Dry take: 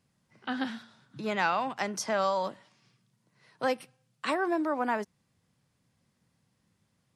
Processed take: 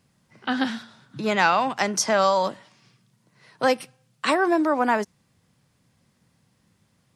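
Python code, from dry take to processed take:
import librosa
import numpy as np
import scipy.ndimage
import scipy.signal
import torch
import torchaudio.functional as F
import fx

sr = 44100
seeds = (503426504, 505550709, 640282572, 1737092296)

y = fx.dynamic_eq(x, sr, hz=6400.0, q=1.0, threshold_db=-54.0, ratio=4.0, max_db=4)
y = F.gain(torch.from_numpy(y), 8.0).numpy()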